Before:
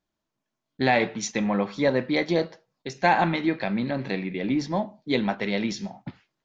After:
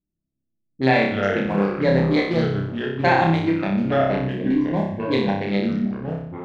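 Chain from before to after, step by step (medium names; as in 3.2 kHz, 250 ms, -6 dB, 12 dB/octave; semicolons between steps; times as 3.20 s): local Wiener filter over 41 samples; level-controlled noise filter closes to 310 Hz, open at -21.5 dBFS; ever faster or slower copies 81 ms, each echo -4 st, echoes 3, each echo -6 dB; 4.06–5.50 s: Butterworth band-stop 1.3 kHz, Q 3.6; on a send: flutter echo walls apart 5.2 m, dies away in 0.65 s; on the sum: trim +1 dB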